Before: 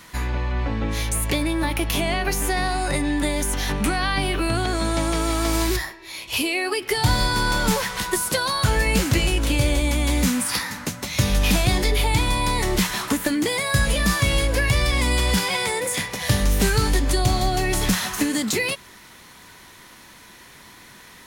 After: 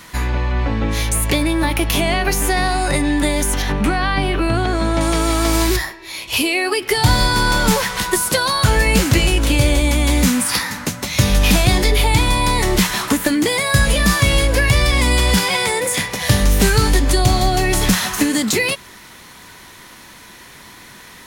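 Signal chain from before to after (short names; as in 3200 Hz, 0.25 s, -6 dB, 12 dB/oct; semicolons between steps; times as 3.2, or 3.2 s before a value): 3.62–5.01 high shelf 4300 Hz -11.5 dB; gain +5.5 dB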